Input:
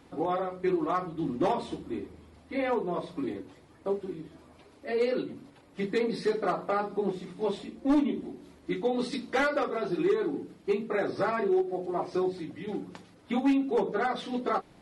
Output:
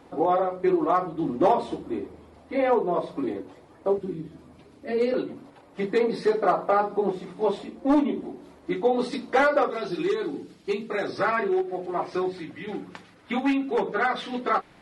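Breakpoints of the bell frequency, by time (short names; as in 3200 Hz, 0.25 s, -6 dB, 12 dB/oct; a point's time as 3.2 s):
bell +8.5 dB 2.2 oct
650 Hz
from 3.98 s 170 Hz
from 5.14 s 770 Hz
from 9.7 s 4900 Hz
from 11.18 s 1800 Hz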